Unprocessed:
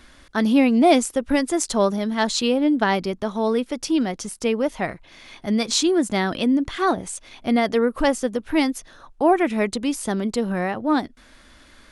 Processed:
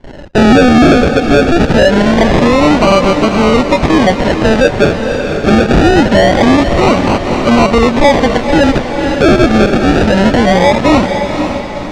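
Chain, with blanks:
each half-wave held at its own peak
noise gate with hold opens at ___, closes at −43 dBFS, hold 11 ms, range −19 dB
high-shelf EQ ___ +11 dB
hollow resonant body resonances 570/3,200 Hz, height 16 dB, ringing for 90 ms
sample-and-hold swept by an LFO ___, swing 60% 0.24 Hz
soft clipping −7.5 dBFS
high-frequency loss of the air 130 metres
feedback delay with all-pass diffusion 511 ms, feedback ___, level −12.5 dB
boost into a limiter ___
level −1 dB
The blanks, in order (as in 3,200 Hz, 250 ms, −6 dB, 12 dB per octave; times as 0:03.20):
−40 dBFS, 3,300 Hz, 35×, 47%, +14.5 dB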